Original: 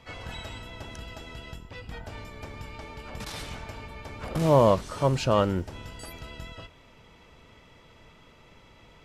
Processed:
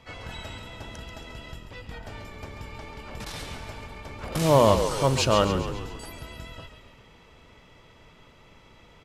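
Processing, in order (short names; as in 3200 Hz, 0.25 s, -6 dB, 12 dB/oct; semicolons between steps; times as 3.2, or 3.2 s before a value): 4.32–5.45 high shelf 2100 Hz +10 dB; frequency-shifting echo 0.137 s, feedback 55%, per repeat -42 Hz, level -9 dB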